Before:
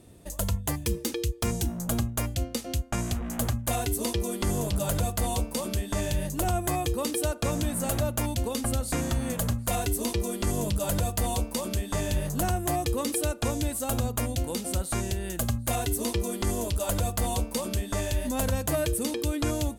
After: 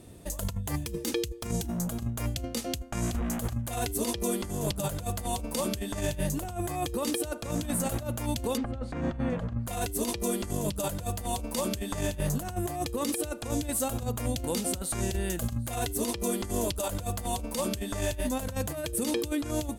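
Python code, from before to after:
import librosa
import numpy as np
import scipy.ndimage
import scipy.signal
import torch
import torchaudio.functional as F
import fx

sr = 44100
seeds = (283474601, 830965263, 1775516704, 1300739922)

y = fx.over_compress(x, sr, threshold_db=-30.0, ratio=-0.5)
y = fx.lowpass(y, sr, hz=2000.0, slope=12, at=(8.56, 9.66), fade=0.02)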